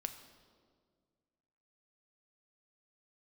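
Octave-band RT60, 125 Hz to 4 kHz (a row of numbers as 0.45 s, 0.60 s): 2.3 s, 2.3 s, 2.0 s, 1.6 s, 1.2 s, 1.3 s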